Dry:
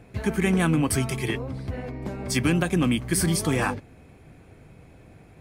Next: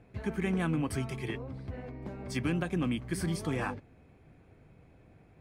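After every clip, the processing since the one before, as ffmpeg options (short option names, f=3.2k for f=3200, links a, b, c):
-af "highshelf=f=5.4k:g=-11.5,volume=-8.5dB"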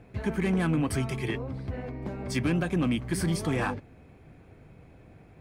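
-af "asoftclip=type=tanh:threshold=-24dB,volume=6dB"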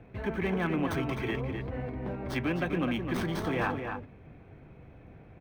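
-filter_complex "[0:a]acrossover=split=290|4000[a][b][c];[a]alimiter=level_in=8.5dB:limit=-24dB:level=0:latency=1,volume=-8.5dB[d];[c]acrusher=samples=18:mix=1:aa=0.000001[e];[d][b][e]amix=inputs=3:normalize=0,asplit=2[f][g];[g]adelay=256.6,volume=-6dB,highshelf=f=4k:g=-5.77[h];[f][h]amix=inputs=2:normalize=0"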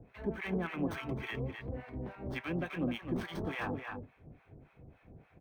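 -filter_complex "[0:a]acrossover=split=780[a][b];[a]aeval=exprs='val(0)*(1-1/2+1/2*cos(2*PI*3.5*n/s))':c=same[c];[b]aeval=exprs='val(0)*(1-1/2-1/2*cos(2*PI*3.5*n/s))':c=same[d];[c][d]amix=inputs=2:normalize=0,volume=-1.5dB"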